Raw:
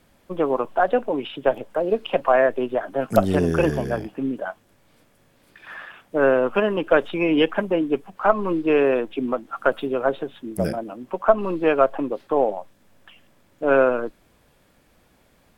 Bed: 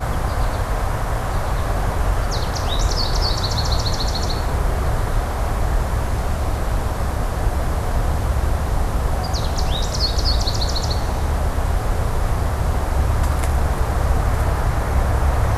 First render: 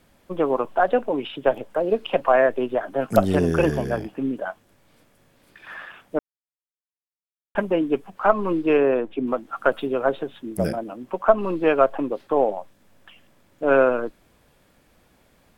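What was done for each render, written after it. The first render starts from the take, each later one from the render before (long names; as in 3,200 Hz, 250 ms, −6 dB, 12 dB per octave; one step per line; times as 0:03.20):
0:06.19–0:07.55: silence
0:08.77–0:09.27: high-shelf EQ 2,500 Hz −10.5 dB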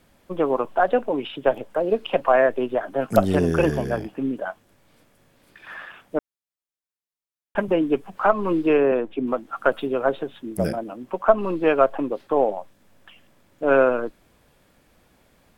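0:07.68–0:08.92: multiband upward and downward compressor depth 40%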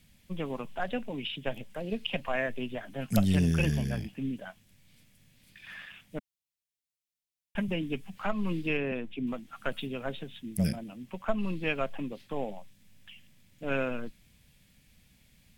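flat-topped bell 670 Hz −16 dB 2.7 octaves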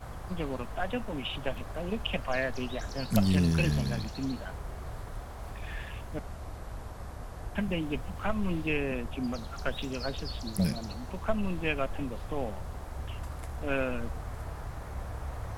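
mix in bed −20 dB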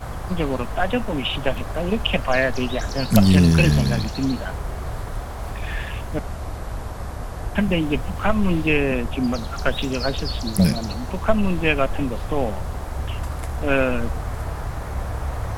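level +11 dB
brickwall limiter −1 dBFS, peak gain reduction 1 dB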